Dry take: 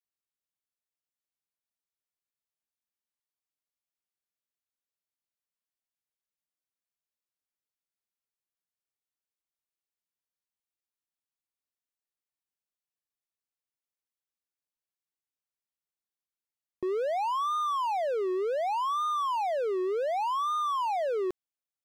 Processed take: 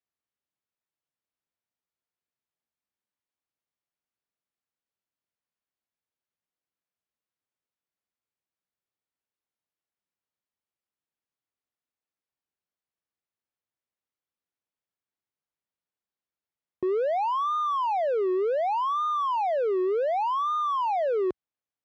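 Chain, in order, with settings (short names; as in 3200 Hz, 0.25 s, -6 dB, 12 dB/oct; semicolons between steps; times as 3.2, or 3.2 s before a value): HPF 57 Hz; tape spacing loss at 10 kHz 21 dB; gain +5 dB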